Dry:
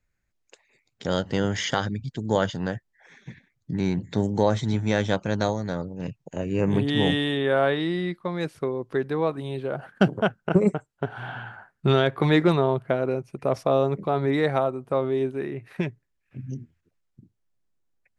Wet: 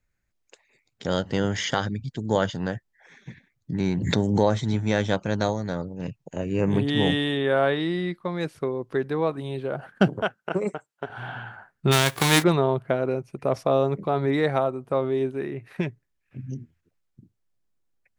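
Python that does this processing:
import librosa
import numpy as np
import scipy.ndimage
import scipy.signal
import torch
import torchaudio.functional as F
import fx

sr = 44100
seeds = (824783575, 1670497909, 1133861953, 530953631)

y = fx.pre_swell(x, sr, db_per_s=39.0, at=(3.8, 4.45))
y = fx.highpass(y, sr, hz=590.0, slope=6, at=(10.22, 11.1))
y = fx.envelope_flatten(y, sr, power=0.3, at=(11.91, 12.42), fade=0.02)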